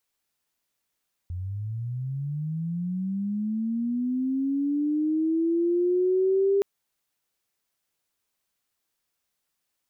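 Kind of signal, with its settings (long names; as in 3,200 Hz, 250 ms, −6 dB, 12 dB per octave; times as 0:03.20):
glide linear 86 Hz → 400 Hz −29.5 dBFS → −18.5 dBFS 5.32 s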